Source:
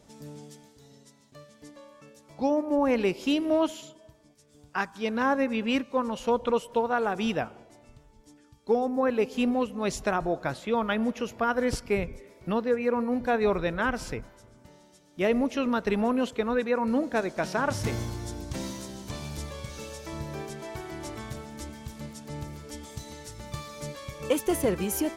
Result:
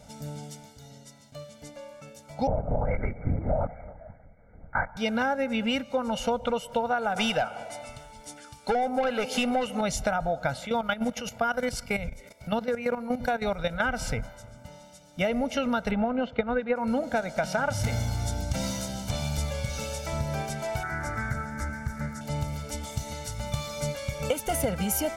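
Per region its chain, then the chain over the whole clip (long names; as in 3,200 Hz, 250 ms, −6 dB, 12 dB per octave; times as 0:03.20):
0:02.47–0:04.97: linear-prediction vocoder at 8 kHz whisper + linear-phase brick-wall low-pass 2,300 Hz + highs frequency-modulated by the lows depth 0.11 ms
0:07.16–0:09.81: parametric band 9,500 Hz +8.5 dB 0.23 octaves + mid-hump overdrive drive 17 dB, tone 6,100 Hz, clips at −13.5 dBFS
0:10.66–0:13.82: high-shelf EQ 2,900 Hz +6.5 dB + output level in coarse steps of 13 dB
0:15.91–0:16.76: high-frequency loss of the air 320 metres + transient designer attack +9 dB, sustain −2 dB
0:20.83–0:22.21: drawn EQ curve 370 Hz 0 dB, 680 Hz −6 dB, 1,700 Hz +12 dB, 3,000 Hz −18 dB, 5,600 Hz −6 dB + highs frequency-modulated by the lows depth 0.16 ms
whole clip: comb filter 1.4 ms, depth 85%; downward compressor, threshold −28 dBFS; level +4.5 dB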